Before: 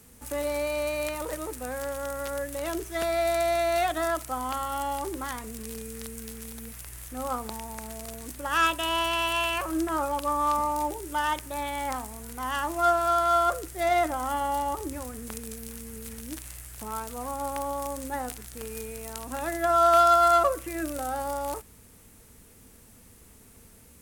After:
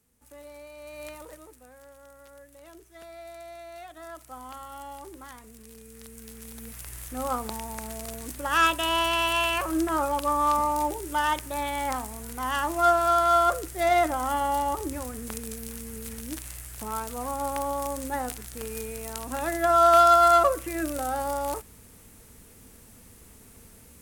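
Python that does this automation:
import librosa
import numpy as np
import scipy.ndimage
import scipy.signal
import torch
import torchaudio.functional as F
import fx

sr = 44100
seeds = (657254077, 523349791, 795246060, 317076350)

y = fx.gain(x, sr, db=fx.line((0.77, -16.5), (1.09, -8.5), (1.7, -18.0), (3.88, -18.0), (4.35, -10.5), (5.76, -10.5), (6.9, 2.0)))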